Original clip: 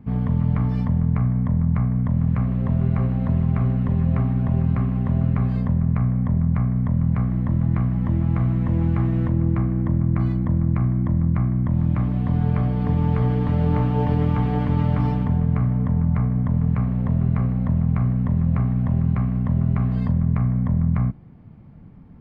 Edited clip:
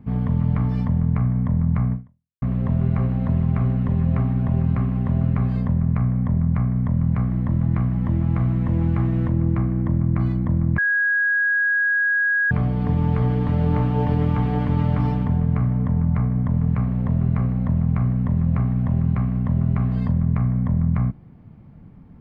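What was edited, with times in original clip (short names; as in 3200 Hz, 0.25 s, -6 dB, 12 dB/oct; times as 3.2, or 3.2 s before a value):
1.93–2.42 fade out exponential
10.78–12.51 bleep 1650 Hz -16.5 dBFS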